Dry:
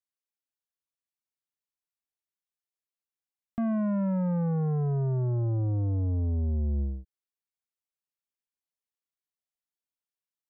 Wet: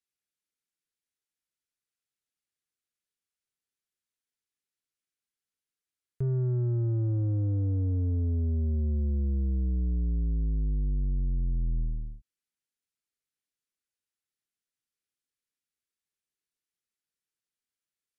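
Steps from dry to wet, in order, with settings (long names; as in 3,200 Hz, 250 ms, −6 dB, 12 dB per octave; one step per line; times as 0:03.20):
flat-topped bell 1,400 Hz −11.5 dB 1.1 octaves
wrong playback speed 78 rpm record played at 45 rpm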